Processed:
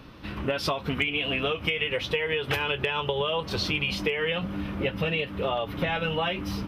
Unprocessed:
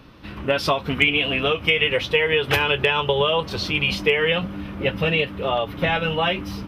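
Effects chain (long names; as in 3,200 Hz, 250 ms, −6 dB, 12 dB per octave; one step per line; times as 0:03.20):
downward compressor, threshold −24 dBFS, peak gain reduction 11 dB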